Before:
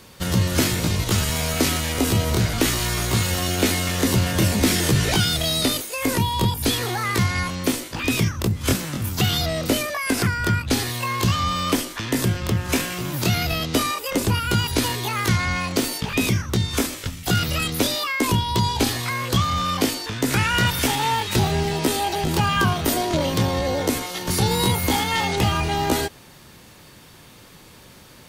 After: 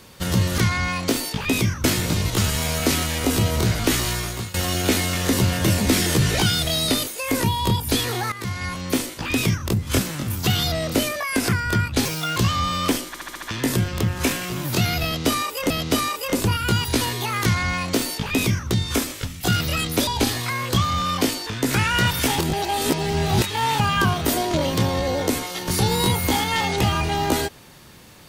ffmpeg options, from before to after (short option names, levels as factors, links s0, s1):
-filter_complex "[0:a]asplit=16[s0][s1][s2][s3][s4][s5][s6][s7][s8][s9][s10][s11][s12][s13][s14][s15];[s0]atrim=end=0.582[s16];[s1]atrim=start=15.258:end=16.522[s17];[s2]atrim=start=0.578:end=3.28,asetpts=PTS-STARTPTS,afade=t=out:st=2.232:d=0.47:silence=0.125893[s18];[s3]atrim=start=3.28:end=7.06,asetpts=PTS-STARTPTS,afade=t=in:d=0.004:c=hsin:silence=0.125893,afade=t=out:st=3.776:d=0.004:c=hsin:silence=0.199526[s19];[s4]atrim=start=7.06:end=10.794,asetpts=PTS-STARTPTS,afade=t=in:d=0.65:silence=0.199526[s20];[s5]atrim=start=10.79:end=11.2,asetpts=PTS-STARTPTS,asetrate=57771,aresample=44100,atrim=end_sample=13802,asetpts=PTS-STARTPTS[s21];[s6]atrim=start=11.196:end=11.982[s22];[s7]atrim=start=11.908:end=11.982[s23];[s8]atrim=start=11.908:end=11.982[s24];[s9]atrim=start=11.908:end=11.982[s25];[s10]atrim=start=11.908:end=11.982[s26];[s11]atrim=start=11.908:end=14.192[s27];[s12]atrim=start=13.528:end=17.902[s28];[s13]atrim=start=18.668:end=20.982[s29];[s14]atrim=start=20.978:end=22.392,asetpts=PTS-STARTPTS,areverse[s30];[s15]atrim=start=22.388[s31];[s16][s17]acrossfade=d=0.004:c1=hsin:c2=hsin[s32];[s18][s19][s20]concat=n=3:v=0:a=1[s33];[s32][s33]acrossfade=d=0.004:c1=hsin:c2=hsin[s34];[s34][s21]acrossfade=d=0.004:c1=hsin:c2=hsin[s35];[s35][s22]acrossfade=d=0.004:c1=hsin:c2=hsin[s36];[s36][s23]acrossfade=d=0.004:c1=hsin:c2=hsin[s37];[s37][s24]acrossfade=d=0.004:c1=hsin:c2=hsin[s38];[s38][s25]acrossfade=d=0.004:c1=hsin:c2=hsin[s39];[s39][s26]acrossfade=d=0.004:c1=hsin:c2=hsin[s40];[s40][s27]acrossfade=d=0.004:c1=hsin:c2=hsin[s41];[s41][s28]acrossfade=d=0.004:c1=hsin:c2=hsin[s42];[s42][s29]acrossfade=d=0.004:c1=hsin:c2=hsin[s43];[s43][s30]acrossfade=d=0.004:c1=hsin:c2=hsin[s44];[s44][s31]acrossfade=d=0.004:c1=hsin:c2=hsin"